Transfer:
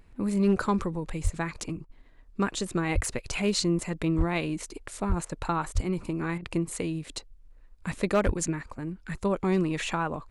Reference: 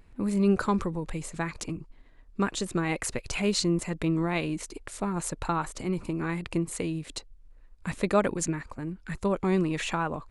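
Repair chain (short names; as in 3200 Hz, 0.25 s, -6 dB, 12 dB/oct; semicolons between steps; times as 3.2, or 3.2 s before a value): clip repair -16 dBFS; de-plosive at 1.23/2.94/4.17/5.08/5.74/8.25; interpolate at 1.85/5.25/6.38, 43 ms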